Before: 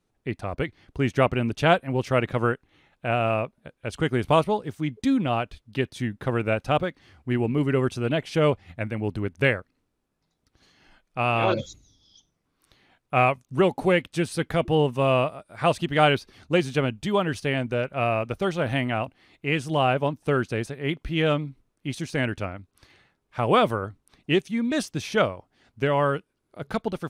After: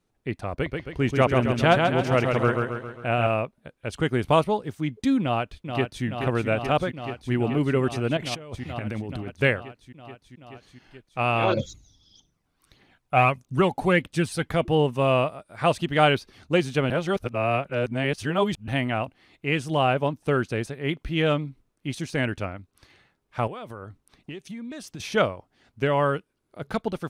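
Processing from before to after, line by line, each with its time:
0.52–3.27 s: feedback delay 135 ms, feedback 52%, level -4 dB
5.21–6.05 s: echo throw 430 ms, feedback 85%, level -6.5 dB
8.17–9.32 s: compressor with a negative ratio -33 dBFS
11.57–14.52 s: phaser 1.6 Hz, delay 1.5 ms, feedback 42%
16.90–18.68 s: reverse
23.47–25.00 s: compression 16:1, threshold -33 dBFS

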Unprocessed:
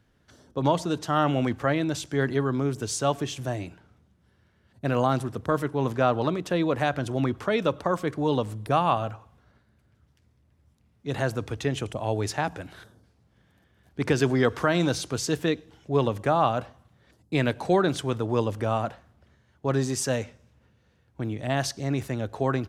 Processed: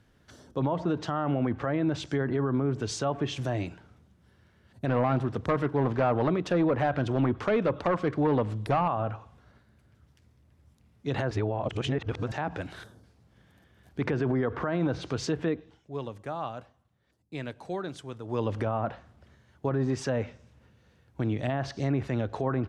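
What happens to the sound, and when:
4.88–8.88 s: hard clipper -20.5 dBFS
11.31–12.32 s: reverse
15.47–18.60 s: dip -15 dB, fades 0.36 s
whole clip: low-pass that closes with the level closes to 1.6 kHz, closed at -21.5 dBFS; peak limiter -21.5 dBFS; trim +2.5 dB

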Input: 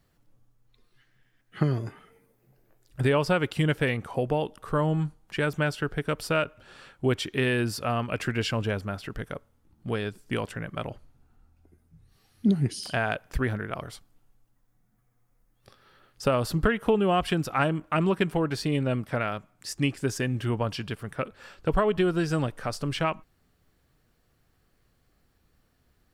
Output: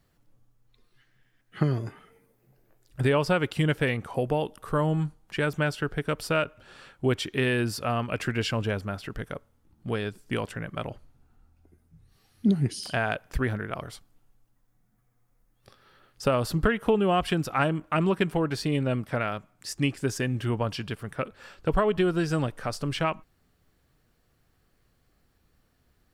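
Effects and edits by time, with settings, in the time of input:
4.14–5.06 s: peaking EQ 12 kHz +5.5 dB 0.81 oct

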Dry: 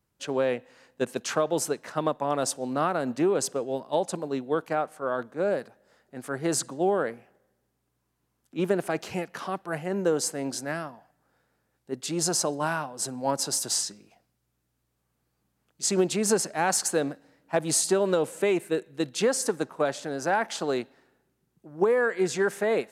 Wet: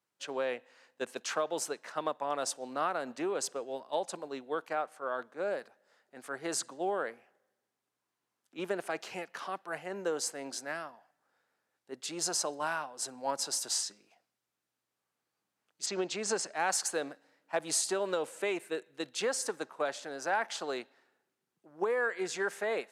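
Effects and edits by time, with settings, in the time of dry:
15.85–16.58 s: low-pass 5.7 kHz -> 10 kHz 24 dB/octave
whole clip: frequency weighting A; trim -5 dB

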